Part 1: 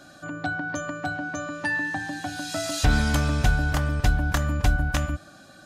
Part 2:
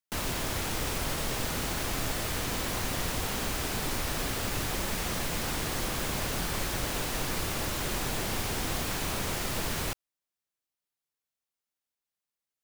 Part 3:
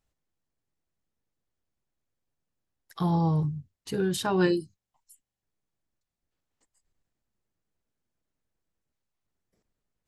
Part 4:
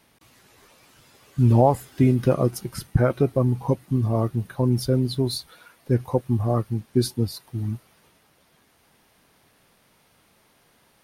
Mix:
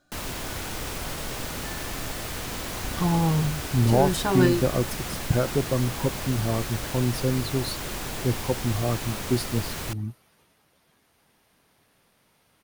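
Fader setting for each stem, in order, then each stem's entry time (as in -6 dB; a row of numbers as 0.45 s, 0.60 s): -19.0 dB, -1.0 dB, +2.0 dB, -4.0 dB; 0.00 s, 0.00 s, 0.00 s, 2.35 s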